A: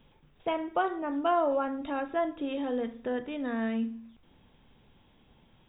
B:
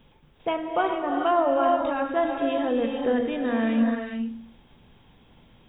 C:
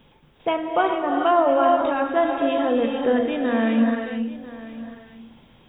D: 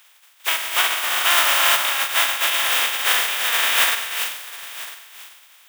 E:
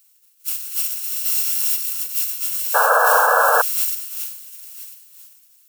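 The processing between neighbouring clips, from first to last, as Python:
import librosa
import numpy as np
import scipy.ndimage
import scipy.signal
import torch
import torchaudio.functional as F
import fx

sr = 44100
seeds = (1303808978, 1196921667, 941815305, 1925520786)

y1 = fx.rider(x, sr, range_db=10, speed_s=2.0)
y1 = fx.rev_gated(y1, sr, seeds[0], gate_ms=470, shape='rising', drr_db=2.0)
y1 = y1 * 10.0 ** (4.5 / 20.0)
y2 = fx.low_shelf(y1, sr, hz=87.0, db=-7.0)
y2 = y2 + 10.0 ** (-16.5 / 20.0) * np.pad(y2, (int(996 * sr / 1000.0), 0))[:len(y2)]
y2 = y2 * 10.0 ** (4.0 / 20.0)
y3 = fx.spec_flatten(y2, sr, power=0.24)
y3 = scipy.signal.sosfilt(scipy.signal.butter(2, 1200.0, 'highpass', fs=sr, output='sos'), y3)
y3 = y3 * 10.0 ** (3.5 / 20.0)
y4 = fx.bit_reversed(y3, sr, seeds[1], block=128)
y4 = librosa.effects.preemphasis(y4, coef=0.9, zi=[0.0])
y4 = fx.spec_paint(y4, sr, seeds[2], shape='noise', start_s=2.74, length_s=0.88, low_hz=450.0, high_hz=1700.0, level_db=-9.0)
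y4 = y4 * 10.0 ** (-6.0 / 20.0)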